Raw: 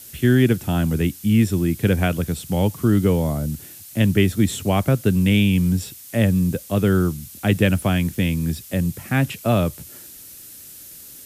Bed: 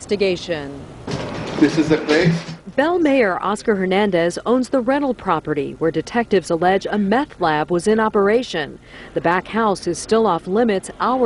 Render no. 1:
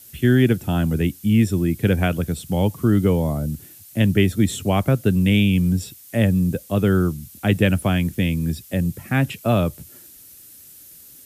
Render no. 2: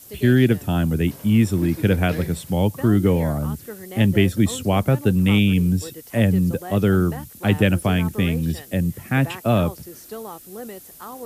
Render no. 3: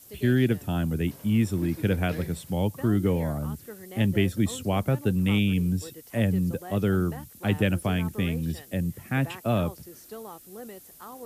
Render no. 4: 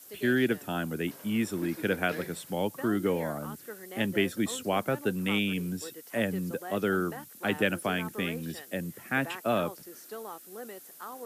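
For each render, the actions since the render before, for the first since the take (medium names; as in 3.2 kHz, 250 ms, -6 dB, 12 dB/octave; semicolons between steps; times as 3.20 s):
noise reduction 6 dB, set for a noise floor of -41 dBFS
add bed -19 dB
trim -6.5 dB
high-pass 270 Hz 12 dB/octave; peaking EQ 1.5 kHz +5 dB 0.62 oct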